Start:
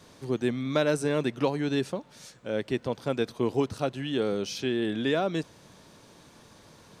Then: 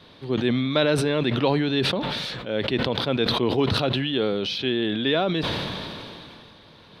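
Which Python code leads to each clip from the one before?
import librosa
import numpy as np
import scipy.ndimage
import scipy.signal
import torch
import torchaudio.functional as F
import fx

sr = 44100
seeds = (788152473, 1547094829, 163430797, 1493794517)

y = fx.high_shelf_res(x, sr, hz=5100.0, db=-11.5, q=3.0)
y = fx.sustainer(y, sr, db_per_s=22.0)
y = F.gain(torch.from_numpy(y), 2.5).numpy()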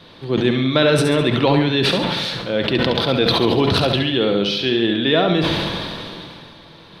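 y = fx.echo_feedback(x, sr, ms=69, feedback_pct=50, wet_db=-7.0)
y = fx.room_shoebox(y, sr, seeds[0], volume_m3=2900.0, walls='furnished', distance_m=0.73)
y = F.gain(torch.from_numpy(y), 5.0).numpy()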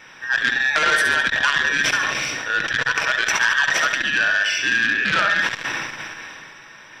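y = fx.band_invert(x, sr, width_hz=2000)
y = fx.transformer_sat(y, sr, knee_hz=2700.0)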